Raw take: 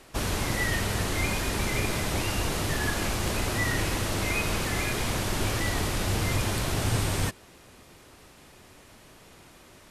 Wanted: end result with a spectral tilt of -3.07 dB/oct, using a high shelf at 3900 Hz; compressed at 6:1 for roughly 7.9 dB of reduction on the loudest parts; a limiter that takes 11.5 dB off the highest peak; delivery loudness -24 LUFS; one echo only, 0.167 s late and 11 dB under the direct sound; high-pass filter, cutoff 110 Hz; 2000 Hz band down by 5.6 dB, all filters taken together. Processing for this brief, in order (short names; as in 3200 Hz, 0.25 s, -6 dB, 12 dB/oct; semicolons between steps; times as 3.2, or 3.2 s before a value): HPF 110 Hz; bell 2000 Hz -8.5 dB; high shelf 3900 Hz +6.5 dB; compressor 6:1, threshold -33 dBFS; limiter -33.5 dBFS; echo 0.167 s -11 dB; gain +18 dB